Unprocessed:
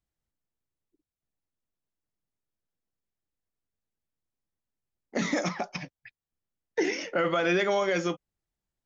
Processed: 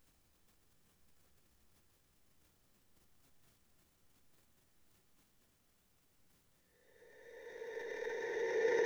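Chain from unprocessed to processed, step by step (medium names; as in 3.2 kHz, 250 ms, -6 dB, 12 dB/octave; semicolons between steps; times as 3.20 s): Paulstretch 38×, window 0.50 s, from 6.36 s; transient shaper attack +1 dB, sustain +8 dB; trim +17 dB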